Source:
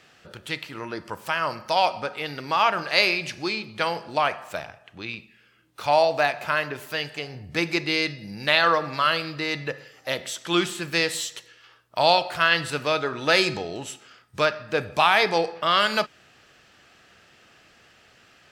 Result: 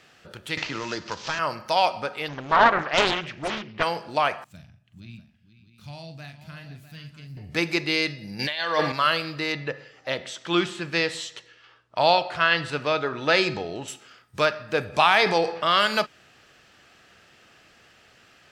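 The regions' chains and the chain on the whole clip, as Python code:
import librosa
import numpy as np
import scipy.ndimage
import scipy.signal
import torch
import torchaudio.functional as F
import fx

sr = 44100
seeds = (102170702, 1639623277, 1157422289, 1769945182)

y = fx.chain(x, sr, fx.cvsd(bps=32000),
    fx.high_shelf(hz=3200.0, db=11.5),
    fx.band_squash(depth_pct=100), at=(0.57, 1.39))
y = fx.chain(y, sr, fx.lowpass(hz=2600.0, slope=12),
    fx.dynamic_eq(hz=990.0, q=0.86, threshold_db=-31.0, ratio=4.0, max_db=5),
    fx.doppler_dist(depth_ms=0.9), at=(2.28, 3.83))
y = fx.chain(y, sr, fx.curve_eq(hz=(200.0, 420.0, 860.0, 3700.0), db=(0, -25, -28, -15)),
    fx.echo_multitap(ms=(43, 476, 647), db=(-8.5, -13.0, -13.0)), at=(4.44, 7.37))
y = fx.chain(y, sr, fx.peak_eq(hz=3300.0, db=9.0, octaves=1.7),
    fx.over_compress(threshold_db=-24.0, ratio=-1.0),
    fx.notch_comb(f0_hz=1300.0), at=(8.39, 8.92))
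y = fx.chain(y, sr, fx.lowpass(hz=7000.0, slope=12),
    fx.high_shelf(hz=5200.0, db=-6.5), at=(9.52, 13.88))
y = fx.chain(y, sr, fx.lowpass(hz=9500.0, slope=12),
    fx.transient(attack_db=1, sustain_db=5), at=(14.93, 15.66))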